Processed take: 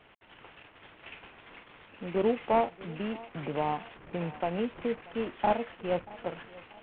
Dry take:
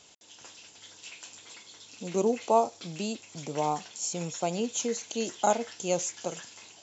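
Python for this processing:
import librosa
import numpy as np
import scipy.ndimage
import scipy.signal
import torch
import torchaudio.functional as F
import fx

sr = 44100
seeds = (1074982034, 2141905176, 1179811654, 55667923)

y = fx.cvsd(x, sr, bps=16000)
y = fx.echo_feedback(y, sr, ms=634, feedback_pct=41, wet_db=-21)
y = fx.band_squash(y, sr, depth_pct=40, at=(3.34, 4.95))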